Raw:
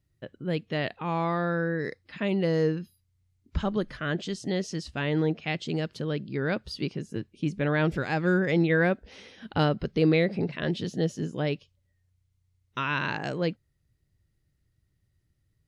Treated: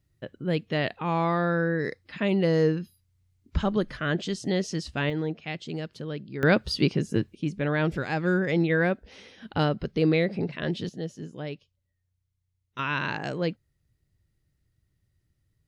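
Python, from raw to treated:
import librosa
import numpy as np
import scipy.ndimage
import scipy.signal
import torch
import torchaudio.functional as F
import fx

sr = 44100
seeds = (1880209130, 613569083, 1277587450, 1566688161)

y = fx.gain(x, sr, db=fx.steps((0.0, 2.5), (5.1, -4.0), (6.43, 8.0), (7.35, -0.5), (10.89, -7.0), (12.79, 0.0)))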